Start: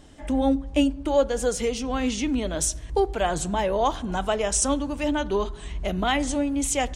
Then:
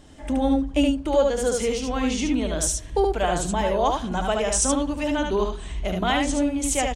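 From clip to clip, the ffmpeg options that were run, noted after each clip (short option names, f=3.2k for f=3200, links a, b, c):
-af "aecho=1:1:73:0.668"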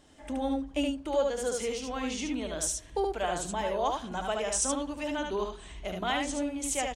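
-af "lowshelf=f=220:g=-9,volume=-6.5dB"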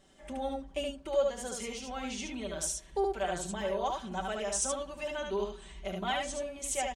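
-af "aecho=1:1:5.2:0.77,volume=-5dB"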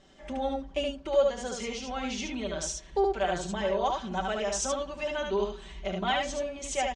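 -af "lowpass=f=6.5k:w=0.5412,lowpass=f=6.5k:w=1.3066,volume=4.5dB"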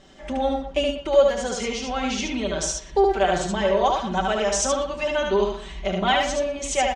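-filter_complex "[0:a]asplit=2[a][b];[b]adelay=120,highpass=300,lowpass=3.4k,asoftclip=type=hard:threshold=-23dB,volume=-10dB[c];[a][c]amix=inputs=2:normalize=0,volume=7.5dB"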